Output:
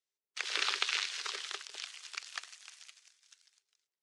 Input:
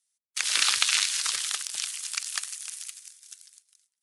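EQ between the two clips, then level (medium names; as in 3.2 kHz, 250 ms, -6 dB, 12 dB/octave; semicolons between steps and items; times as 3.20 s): resonant high-pass 400 Hz, resonance Q 4.9; distance through air 180 m; treble shelf 11 kHz +12 dB; -5.0 dB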